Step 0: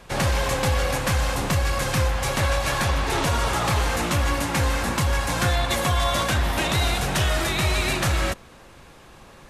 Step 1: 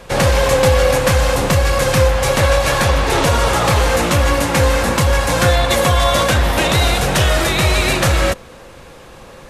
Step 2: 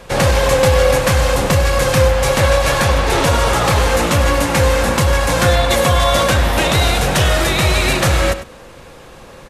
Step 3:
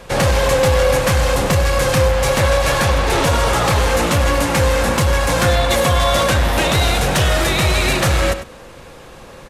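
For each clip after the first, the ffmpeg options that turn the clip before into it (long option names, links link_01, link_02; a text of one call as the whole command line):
ffmpeg -i in.wav -af "equalizer=frequency=510:width=4.8:gain=8,volume=7.5dB" out.wav
ffmpeg -i in.wav -filter_complex "[0:a]asplit=2[link_01][link_02];[link_02]adelay=99.13,volume=-12dB,highshelf=frequency=4000:gain=-2.23[link_03];[link_01][link_03]amix=inputs=2:normalize=0" out.wav
ffmpeg -i in.wav -af "asoftclip=type=tanh:threshold=-7dB" out.wav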